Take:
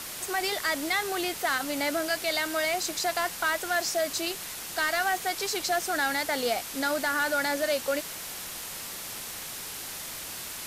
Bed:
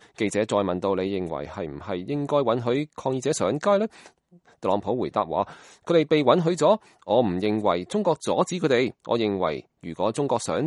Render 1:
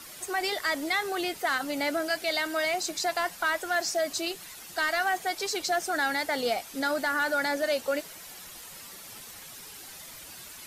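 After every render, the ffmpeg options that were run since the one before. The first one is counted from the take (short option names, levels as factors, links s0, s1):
-af "afftdn=nr=10:nf=-39"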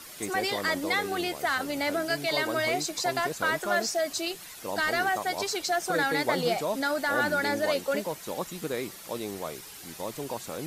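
-filter_complex "[1:a]volume=0.266[s0];[0:a][s0]amix=inputs=2:normalize=0"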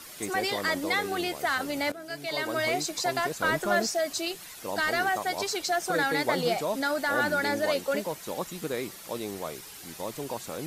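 -filter_complex "[0:a]asettb=1/sr,asplit=3[s0][s1][s2];[s0]atrim=end=3.444[s3];[s1]atrim=start=3.44:end=3.87,asetpts=PTS-STARTPTS,afade=t=in:d=0.004:c=qsin,afade=t=out:st=0.426:d=0.004:c=qsin,lowshelf=f=340:g=7.5[s4];[s2]atrim=start=3.866[s5];[s3][s4]acrossfade=d=0.004:c1=hsin:c2=qsin[s6];[s6][s5]acrossfade=d=0.004:c1=qsin:c2=hsin,asplit=2[s7][s8];[s7]atrim=end=1.92,asetpts=PTS-STARTPTS,afade=t=out:st=1.916:d=0.004:c=hsin:silence=0.141254[s9];[s8]atrim=start=1.92,asetpts=PTS-STARTPTS,afade=t=in:d=0.73:silence=0.141254[s10];[s9][s10]concat=n=2:v=0:a=1"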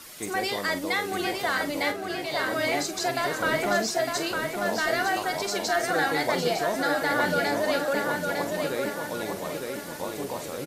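-filter_complex "[0:a]asplit=2[s0][s1];[s1]adelay=45,volume=0.299[s2];[s0][s2]amix=inputs=2:normalize=0,asplit=2[s3][s4];[s4]adelay=906,lowpass=f=4500:p=1,volume=0.668,asplit=2[s5][s6];[s6]adelay=906,lowpass=f=4500:p=1,volume=0.47,asplit=2[s7][s8];[s8]adelay=906,lowpass=f=4500:p=1,volume=0.47,asplit=2[s9][s10];[s10]adelay=906,lowpass=f=4500:p=1,volume=0.47,asplit=2[s11][s12];[s12]adelay=906,lowpass=f=4500:p=1,volume=0.47,asplit=2[s13][s14];[s14]adelay=906,lowpass=f=4500:p=1,volume=0.47[s15];[s3][s5][s7][s9][s11][s13][s15]amix=inputs=7:normalize=0"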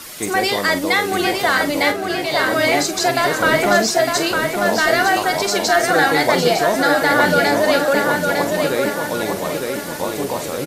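-af "volume=3.16"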